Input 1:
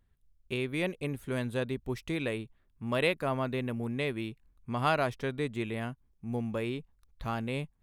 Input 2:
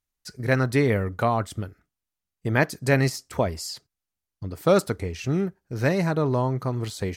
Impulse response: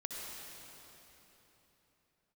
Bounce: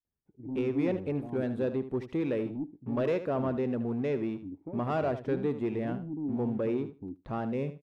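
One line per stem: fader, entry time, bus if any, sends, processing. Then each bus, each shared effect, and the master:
−5.5 dB, 0.05 s, no send, echo send −12 dB, leveller curve on the samples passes 3; resonant band-pass 370 Hz, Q 0.62
−5.0 dB, 0.00 s, no send, echo send −24 dB, auto-filter low-pass square 1.1 Hz 280–3,000 Hz; gain into a clipping stage and back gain 21 dB; formant resonators in series u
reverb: not used
echo: repeating echo 76 ms, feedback 16%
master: no processing

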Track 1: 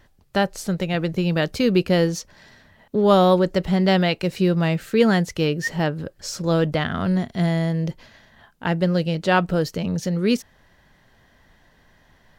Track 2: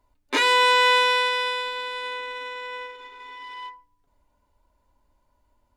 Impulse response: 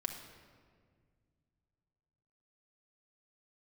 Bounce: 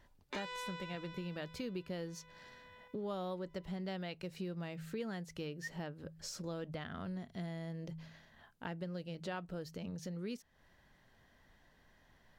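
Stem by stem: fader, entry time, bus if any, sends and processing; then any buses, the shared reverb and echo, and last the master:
−10.5 dB, 0.00 s, no send, hum removal 53.69 Hz, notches 3
−5.0 dB, 0.00 s, no send, Butterworth low-pass 8,000 Hz; automatic ducking −20 dB, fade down 1.00 s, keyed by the first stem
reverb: not used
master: downward compressor 3 to 1, threshold −43 dBFS, peak gain reduction 16 dB

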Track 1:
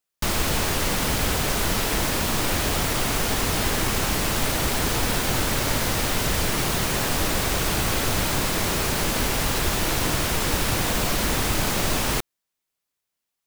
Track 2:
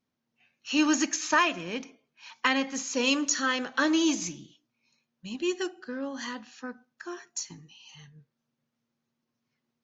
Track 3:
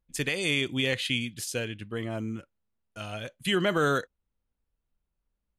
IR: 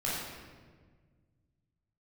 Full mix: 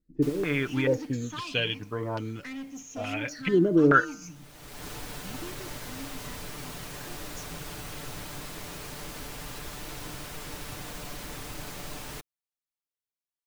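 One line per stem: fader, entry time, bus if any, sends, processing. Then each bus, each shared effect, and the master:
−17.0 dB, 0.00 s, no send, automatic ducking −21 dB, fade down 1.20 s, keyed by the third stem
−11.0 dB, 0.00 s, no send, low-shelf EQ 340 Hz +10.5 dB; all-pass phaser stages 8, 0.43 Hz, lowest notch 470–1,400 Hz; soft clipping −25.5 dBFS, distortion −8 dB
0.0 dB, 0.00 s, no send, de-essing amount 70%; hum removal 154.2 Hz, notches 10; low-pass on a step sequencer 2.3 Hz 340–4,700 Hz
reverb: not used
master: comb filter 6.8 ms, depth 45%

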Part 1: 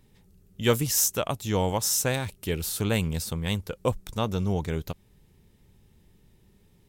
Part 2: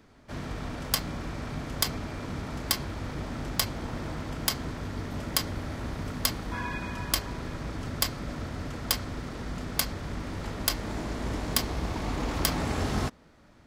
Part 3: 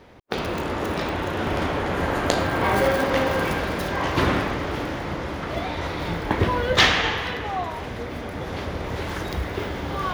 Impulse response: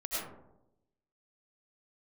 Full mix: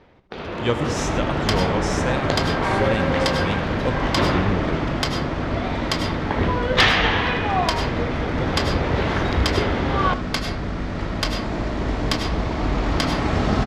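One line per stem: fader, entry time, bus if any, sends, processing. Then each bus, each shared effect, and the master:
−9.0 dB, 0.00 s, send −13.5 dB, no echo send, low-pass filter 9,800 Hz 12 dB per octave
−5.0 dB, 0.55 s, send −4 dB, no echo send, no processing
−2.5 dB, 0.00 s, no send, echo send −14 dB, automatic ducking −7 dB, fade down 0.25 s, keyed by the first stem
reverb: on, RT60 0.90 s, pre-delay 60 ms
echo: single-tap delay 77 ms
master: low-pass filter 4,300 Hz 12 dB per octave; automatic gain control gain up to 9 dB

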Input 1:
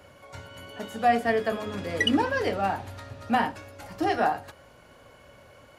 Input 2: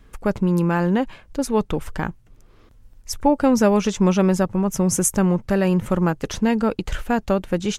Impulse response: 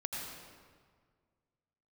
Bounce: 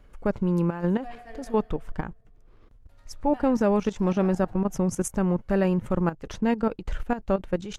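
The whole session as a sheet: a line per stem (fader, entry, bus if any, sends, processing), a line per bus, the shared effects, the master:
−15.5 dB, 0.00 s, muted 0:01.55–0:02.89, send −12 dB, automatic ducking −10 dB, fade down 0.25 s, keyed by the second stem
−1.5 dB, 0.00 s, no send, spectral tilt −3 dB per octave; output level in coarse steps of 13 dB; low-shelf EQ 320 Hz −11.5 dB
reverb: on, RT60 1.8 s, pre-delay 77 ms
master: no processing

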